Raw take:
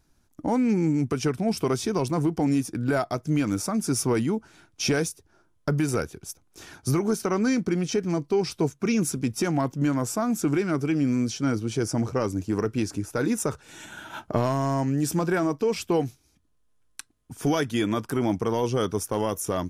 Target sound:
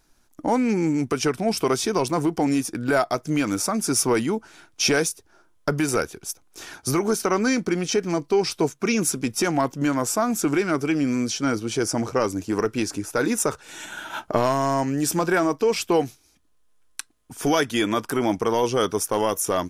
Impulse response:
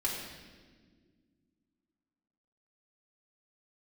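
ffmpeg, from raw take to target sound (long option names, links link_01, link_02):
-af "equalizer=frequency=100:width_type=o:width=2.8:gain=-11,volume=6.5dB"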